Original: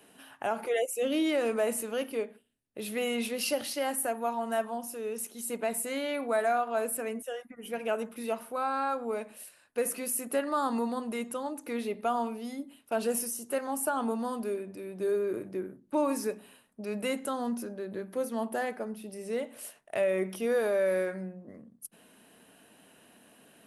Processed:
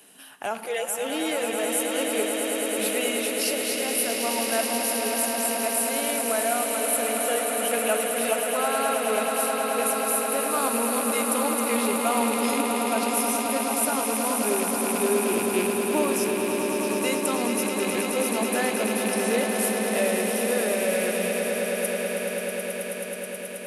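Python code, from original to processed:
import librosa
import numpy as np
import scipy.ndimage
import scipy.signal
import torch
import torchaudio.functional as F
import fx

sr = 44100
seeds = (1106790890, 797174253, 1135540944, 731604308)

p1 = fx.rattle_buzz(x, sr, strikes_db=-43.0, level_db=-32.0)
p2 = scipy.signal.sosfilt(scipy.signal.butter(2, 95.0, 'highpass', fs=sr, output='sos'), p1)
p3 = fx.high_shelf(p2, sr, hz=2700.0, db=10.5)
p4 = fx.rider(p3, sr, range_db=10, speed_s=0.5)
y = p4 + fx.echo_swell(p4, sr, ms=107, loudest=8, wet_db=-8.0, dry=0)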